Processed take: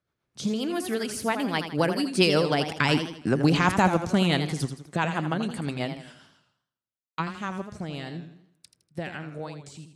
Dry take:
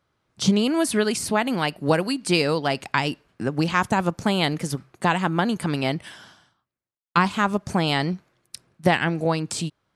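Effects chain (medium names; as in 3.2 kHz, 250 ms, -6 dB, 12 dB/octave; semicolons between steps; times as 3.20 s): Doppler pass-by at 3.21 s, 19 m/s, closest 16 m; rotary cabinet horn 7.5 Hz, later 1.1 Hz, at 6.61 s; modulated delay 82 ms, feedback 44%, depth 122 cents, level -9 dB; trim +4.5 dB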